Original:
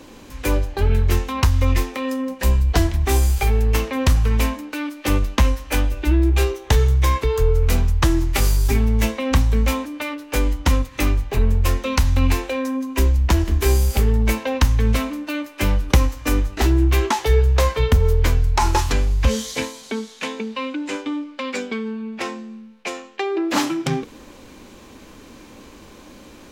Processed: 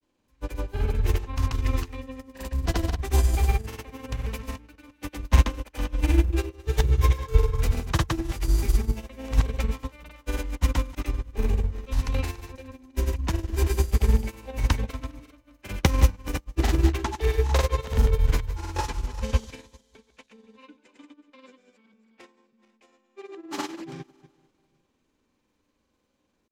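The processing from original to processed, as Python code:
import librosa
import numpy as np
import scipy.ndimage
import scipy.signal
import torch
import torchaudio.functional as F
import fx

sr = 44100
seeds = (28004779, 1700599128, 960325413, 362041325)

y = fx.reverse_delay_fb(x, sr, ms=204, feedback_pct=51, wet_db=-7.0)
y = fx.granulator(y, sr, seeds[0], grain_ms=100.0, per_s=20.0, spray_ms=100.0, spread_st=0)
y = fx.upward_expand(y, sr, threshold_db=-30.0, expansion=2.5)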